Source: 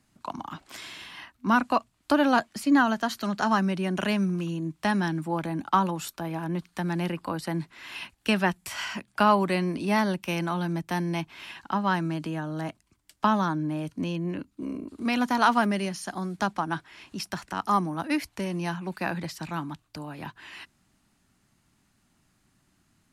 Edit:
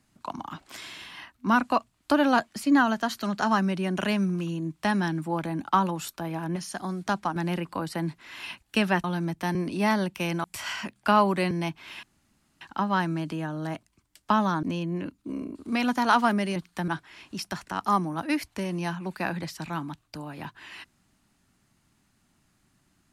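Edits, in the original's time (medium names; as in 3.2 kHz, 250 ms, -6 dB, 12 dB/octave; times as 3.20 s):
6.56–6.88 s: swap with 15.89–16.69 s
8.56–9.63 s: swap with 10.52–11.03 s
11.55 s: insert room tone 0.58 s
13.57–13.96 s: delete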